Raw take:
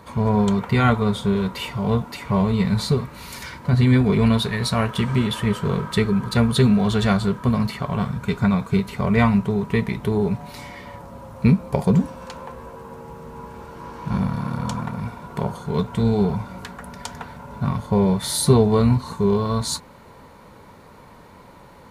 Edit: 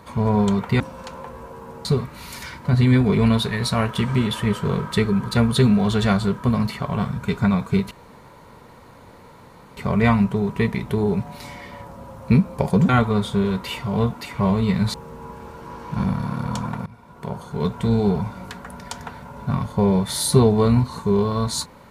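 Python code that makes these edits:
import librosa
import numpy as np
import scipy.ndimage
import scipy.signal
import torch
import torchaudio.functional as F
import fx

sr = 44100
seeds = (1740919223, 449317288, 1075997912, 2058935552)

y = fx.edit(x, sr, fx.swap(start_s=0.8, length_s=2.05, other_s=12.03, other_length_s=1.05),
    fx.insert_room_tone(at_s=8.91, length_s=1.86),
    fx.fade_in_from(start_s=15.0, length_s=0.86, floor_db=-18.5), tone=tone)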